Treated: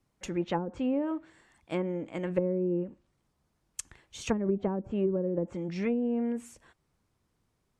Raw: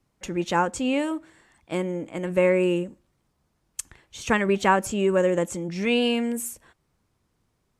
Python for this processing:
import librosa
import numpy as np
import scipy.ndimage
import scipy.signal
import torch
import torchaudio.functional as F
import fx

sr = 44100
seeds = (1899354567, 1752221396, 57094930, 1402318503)

y = fx.env_lowpass_down(x, sr, base_hz=340.0, full_db=-17.5)
y = F.gain(torch.from_numpy(y), -4.0).numpy()